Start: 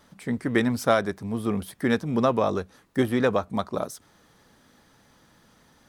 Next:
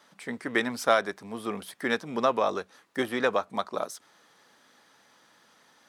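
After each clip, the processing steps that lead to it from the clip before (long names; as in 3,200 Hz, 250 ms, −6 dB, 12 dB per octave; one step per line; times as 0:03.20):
meter weighting curve A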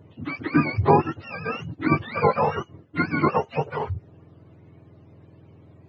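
frequency axis turned over on the octave scale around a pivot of 740 Hz
level +6.5 dB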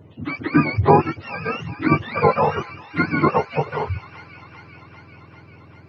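delay with a high-pass on its return 395 ms, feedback 73%, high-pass 1,900 Hz, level −11 dB
level +3.5 dB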